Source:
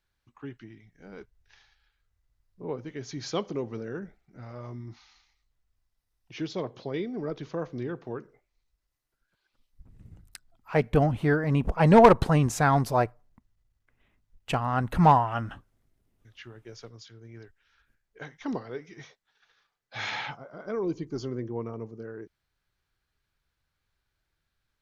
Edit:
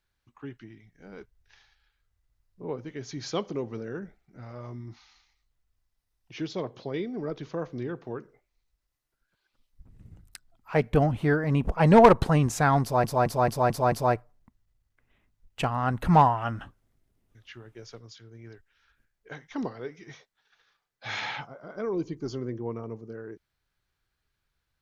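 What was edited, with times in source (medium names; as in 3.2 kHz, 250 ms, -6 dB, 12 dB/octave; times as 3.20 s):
12.82 s: stutter 0.22 s, 6 plays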